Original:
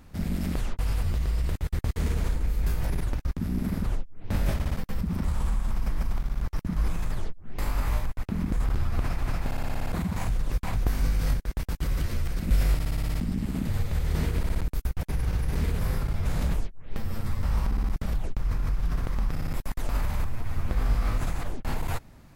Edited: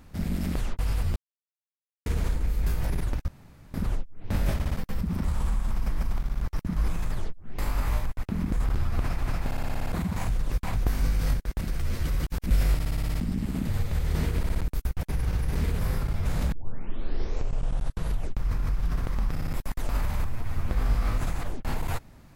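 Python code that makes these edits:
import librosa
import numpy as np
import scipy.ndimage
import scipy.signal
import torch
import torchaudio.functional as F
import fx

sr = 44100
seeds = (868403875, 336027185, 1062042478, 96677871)

y = fx.edit(x, sr, fx.silence(start_s=1.16, length_s=0.9),
    fx.room_tone_fill(start_s=3.28, length_s=0.46),
    fx.reverse_span(start_s=11.61, length_s=0.85),
    fx.tape_start(start_s=16.52, length_s=1.86), tone=tone)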